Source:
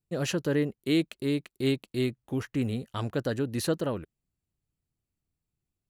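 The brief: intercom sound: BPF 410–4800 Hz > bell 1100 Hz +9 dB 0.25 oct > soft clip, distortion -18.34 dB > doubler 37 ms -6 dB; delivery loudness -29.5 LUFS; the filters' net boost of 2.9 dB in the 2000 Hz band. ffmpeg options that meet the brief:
-filter_complex "[0:a]highpass=410,lowpass=4.8k,equalizer=f=1.1k:t=o:w=0.25:g=9,equalizer=f=2k:t=o:g=3.5,asoftclip=threshold=-21.5dB,asplit=2[a][b];[b]adelay=37,volume=-6dB[c];[a][c]amix=inputs=2:normalize=0,volume=4.5dB"

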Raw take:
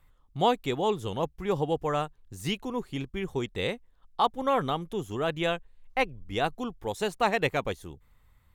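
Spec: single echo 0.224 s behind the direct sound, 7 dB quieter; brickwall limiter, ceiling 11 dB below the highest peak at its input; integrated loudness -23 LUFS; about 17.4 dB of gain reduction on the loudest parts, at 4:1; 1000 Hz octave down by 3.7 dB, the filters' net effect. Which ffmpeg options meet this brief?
-af "equalizer=f=1k:t=o:g=-5,acompressor=threshold=-44dB:ratio=4,alimiter=level_in=14dB:limit=-24dB:level=0:latency=1,volume=-14dB,aecho=1:1:224:0.447,volume=26dB"

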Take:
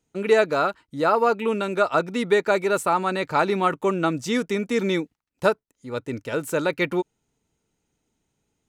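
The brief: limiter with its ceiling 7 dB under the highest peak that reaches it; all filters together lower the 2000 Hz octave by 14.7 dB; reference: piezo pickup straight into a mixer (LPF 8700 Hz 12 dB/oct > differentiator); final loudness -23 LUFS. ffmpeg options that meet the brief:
-af "equalizer=f=2k:t=o:g=-4,alimiter=limit=-14.5dB:level=0:latency=1,lowpass=8.7k,aderivative,volume=19.5dB"

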